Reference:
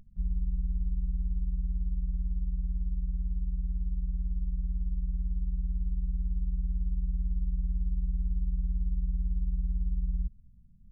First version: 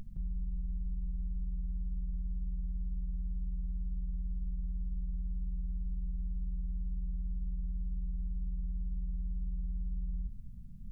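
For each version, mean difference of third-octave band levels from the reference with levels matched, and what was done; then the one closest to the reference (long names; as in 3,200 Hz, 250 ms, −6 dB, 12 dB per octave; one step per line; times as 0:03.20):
4.5 dB: parametric band 69 Hz −5.5 dB 0.36 octaves
in parallel at −2.5 dB: compressor whose output falls as the input rises −42 dBFS, ratio −1
on the sum: brickwall limiter −28.5 dBFS, peak gain reduction 6.5 dB
level −2 dB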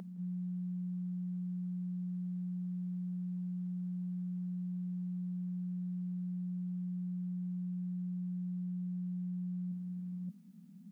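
1.5 dB: Butterworth high-pass 170 Hz 96 dB per octave
reversed playback
downward compressor, threshold −56 dBFS, peak gain reduction 11 dB
reversed playback
backwards echo 573 ms −5.5 dB
level +15 dB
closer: second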